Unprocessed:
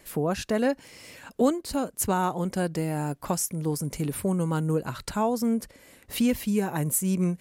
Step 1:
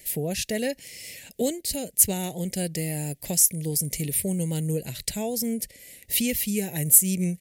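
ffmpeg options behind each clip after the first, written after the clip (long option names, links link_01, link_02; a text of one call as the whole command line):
ffmpeg -i in.wav -af "firequalizer=gain_entry='entry(170,0);entry(270,-6);entry(450,-2);entry(650,-4);entry(1200,-28);entry(1900,4);entry(12000,13)':delay=0.05:min_phase=1" out.wav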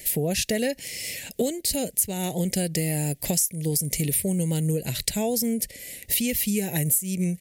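ffmpeg -i in.wav -af "acompressor=threshold=-29dB:ratio=6,volume=7.5dB" out.wav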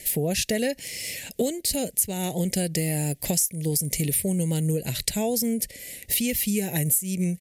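ffmpeg -i in.wav -af "aresample=32000,aresample=44100" out.wav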